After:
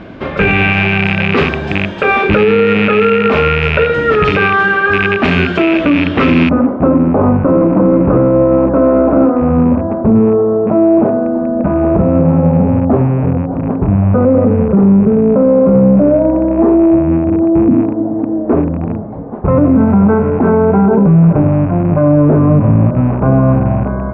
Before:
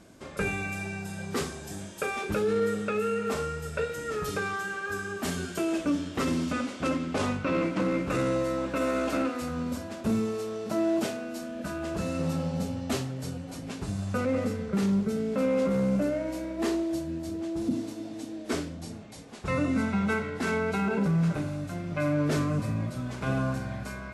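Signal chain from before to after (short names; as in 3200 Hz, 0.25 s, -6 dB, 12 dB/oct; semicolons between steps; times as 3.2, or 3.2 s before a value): rattling part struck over -37 dBFS, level -23 dBFS; LPF 3100 Hz 24 dB/oct, from 6.49 s 1000 Hz; maximiser +23.5 dB; gain -1 dB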